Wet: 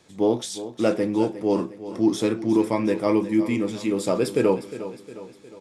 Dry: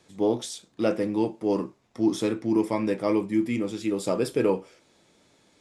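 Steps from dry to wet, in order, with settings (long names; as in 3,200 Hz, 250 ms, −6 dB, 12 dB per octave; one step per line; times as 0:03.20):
repeating echo 358 ms, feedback 50%, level −13.5 dB
level +3 dB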